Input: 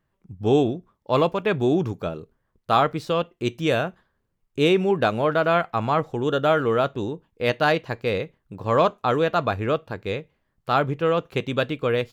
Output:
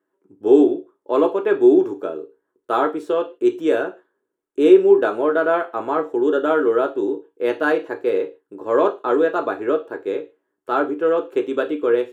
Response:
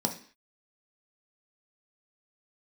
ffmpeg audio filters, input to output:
-filter_complex "[0:a]lowshelf=f=240:t=q:w=1.5:g=-10.5[a];[1:a]atrim=start_sample=2205,asetrate=74970,aresample=44100[b];[a][b]afir=irnorm=-1:irlink=0,volume=-6.5dB"

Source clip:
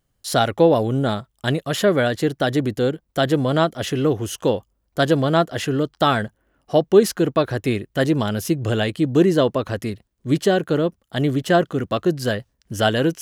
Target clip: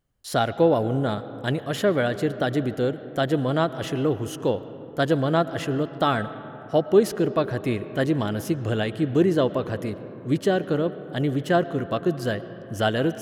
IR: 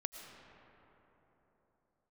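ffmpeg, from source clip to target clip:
-filter_complex "[0:a]asplit=2[a][b];[1:a]atrim=start_sample=2205,lowpass=3.6k[c];[b][c]afir=irnorm=-1:irlink=0,volume=-3.5dB[d];[a][d]amix=inputs=2:normalize=0,volume=-7.5dB"

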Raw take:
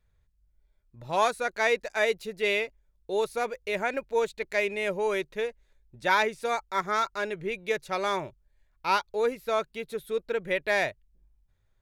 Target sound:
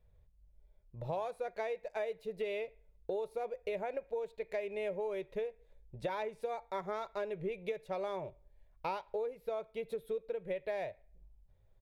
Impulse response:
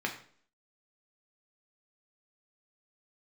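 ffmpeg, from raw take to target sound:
-filter_complex "[0:a]firequalizer=gain_entry='entry(180,0);entry(250,-9);entry(500,4);entry(1400,-13);entry(2700,-8);entry(6200,-15);entry(11000,-11)':delay=0.05:min_phase=1,acompressor=threshold=-39dB:ratio=12,asplit=2[a][b];[1:a]atrim=start_sample=2205,lowshelf=f=250:g=-8.5[c];[b][c]afir=irnorm=-1:irlink=0,volume=-17dB[d];[a][d]amix=inputs=2:normalize=0,volume=3.5dB"

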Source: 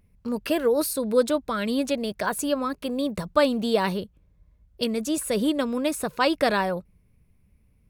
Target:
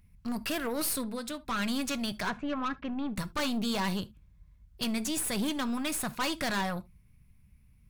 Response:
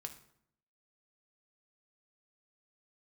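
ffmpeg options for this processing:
-filter_complex "[0:a]equalizer=f=470:w=1.1:g=-15,asettb=1/sr,asplit=3[a][b][c];[a]atrim=end=1.024[d];[b]atrim=start=1.02:end=1.45,asetpts=PTS-STARTPTS,afade=t=in:d=0.004:c=qsin,afade=t=out:st=0.426:d=0.004:c=qsin,acompressor=threshold=-36dB:ratio=6[e];[c]atrim=start=1.446[f];[d][e]acrossfade=d=0.004:c1=hsin:c2=qsin[g];[g][f]acrossfade=d=0.004:c1=qsin:c2=hsin,asettb=1/sr,asplit=3[h][i][j];[h]atrim=end=2.274[k];[i]atrim=start=2.27:end=3.16,asetpts=PTS-STARTPTS,afade=t=in:d=0.004:c=qsin,afade=t=out:st=0.886:d=0.004:c=qsin,lowpass=f=2.2k:w=0.5412,lowpass=f=2.2k:w=1.3066[l];[j]atrim=start=3.156[m];[k][l]acrossfade=d=0.004:c1=hsin:c2=qsin[n];[n][m]acrossfade=d=0.004:c1=qsin:c2=hsin,aeval=exprs='(tanh(39.8*val(0)+0.5)-tanh(0.5))/39.8':c=same,asplit=2[o][p];[1:a]atrim=start_sample=2205,atrim=end_sample=3528[q];[p][q]afir=irnorm=-1:irlink=0,volume=1dB[r];[o][r]amix=inputs=2:normalize=0"

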